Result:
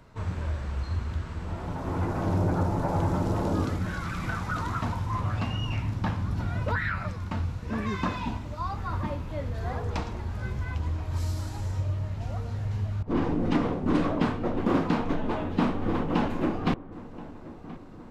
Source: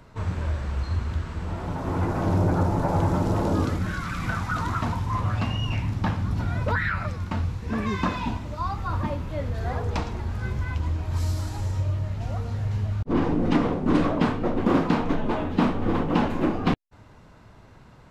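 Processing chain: filtered feedback delay 1027 ms, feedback 63%, low-pass 1.8 kHz, level -17 dB; trim -3.5 dB

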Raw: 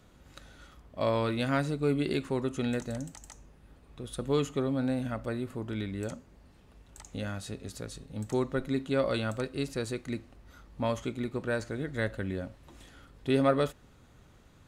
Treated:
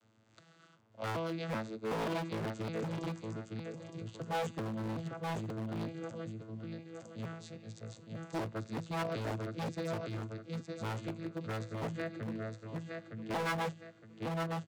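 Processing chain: vocoder on a broken chord bare fifth, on A2, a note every 381 ms; on a send: feedback delay 913 ms, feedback 36%, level -4 dB; on the sum: dynamic bell 160 Hz, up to +5 dB, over -41 dBFS, Q 0.87; wavefolder -24 dBFS; tilt EQ +3 dB/octave; trim -1.5 dB

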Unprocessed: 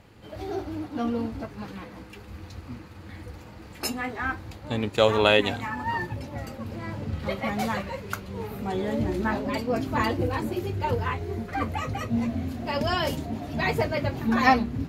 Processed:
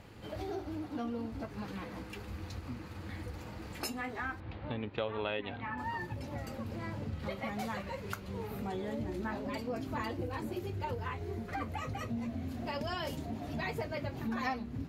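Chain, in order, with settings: 4.40–5.78 s: low-pass 3.4 kHz 24 dB/octave; compression 3:1, threshold -38 dBFS, peak gain reduction 17.5 dB

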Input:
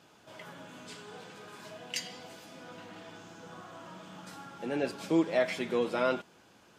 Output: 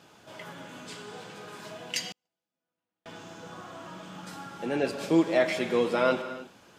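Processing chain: gated-style reverb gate 330 ms flat, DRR 9.5 dB; 2.12–3.06 s: gate -39 dBFS, range -46 dB; trim +4 dB

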